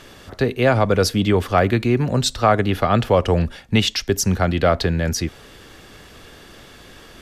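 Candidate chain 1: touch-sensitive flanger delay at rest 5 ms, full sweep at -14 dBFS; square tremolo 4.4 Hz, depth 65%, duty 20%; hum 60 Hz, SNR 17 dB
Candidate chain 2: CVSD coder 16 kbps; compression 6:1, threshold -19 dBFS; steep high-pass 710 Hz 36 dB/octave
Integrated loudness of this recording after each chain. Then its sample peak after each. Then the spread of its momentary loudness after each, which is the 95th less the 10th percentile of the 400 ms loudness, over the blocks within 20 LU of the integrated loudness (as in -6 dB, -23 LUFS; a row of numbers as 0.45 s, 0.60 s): -25.5 LUFS, -35.5 LUFS; -6.0 dBFS, -16.5 dBFS; 21 LU, 15 LU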